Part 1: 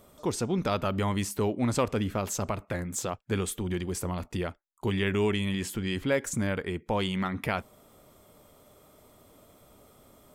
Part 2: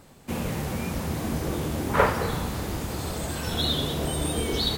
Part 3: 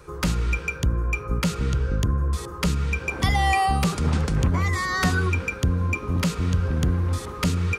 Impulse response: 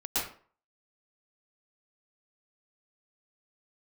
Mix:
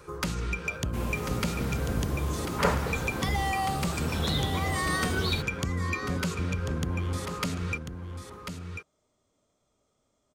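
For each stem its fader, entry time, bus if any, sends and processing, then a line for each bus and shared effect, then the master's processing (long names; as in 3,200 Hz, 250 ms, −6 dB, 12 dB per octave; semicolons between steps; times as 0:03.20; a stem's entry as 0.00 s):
−6.0 dB, 0.00 s, no send, echo send −10.5 dB, harmonic and percussive parts rebalanced percussive −5 dB; transistor ladder low-pass 7,400 Hz, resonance 55%
−6.0 dB, 0.65 s, no send, no echo send, no processing
−1.5 dB, 0.00 s, no send, echo send −8 dB, low-shelf EQ 68 Hz −10 dB; downward compressor, threshold −25 dBFS, peak gain reduction 8 dB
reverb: not used
echo: single-tap delay 1,043 ms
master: no processing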